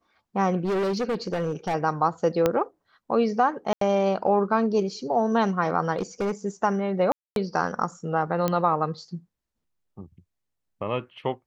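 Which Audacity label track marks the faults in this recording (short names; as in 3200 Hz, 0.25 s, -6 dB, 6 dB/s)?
0.640000	1.750000	clipped -22.5 dBFS
2.460000	2.460000	pop -8 dBFS
3.730000	3.810000	gap 83 ms
5.970000	6.320000	clipped -22 dBFS
7.120000	7.360000	gap 0.242 s
8.480000	8.480000	pop -11 dBFS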